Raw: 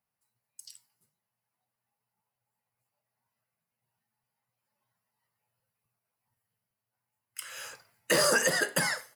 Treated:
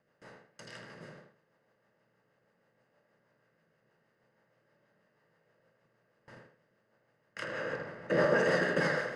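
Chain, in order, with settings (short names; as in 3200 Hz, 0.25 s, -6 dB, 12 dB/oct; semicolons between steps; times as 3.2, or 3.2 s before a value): per-bin compression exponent 0.4; gate with hold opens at -33 dBFS; 7.44–8.39 high shelf 2900 Hz -10.5 dB; rotary speaker horn 6.3 Hz; tape spacing loss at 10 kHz 30 dB; tape echo 79 ms, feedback 31%, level -4 dB, low-pass 3100 Hz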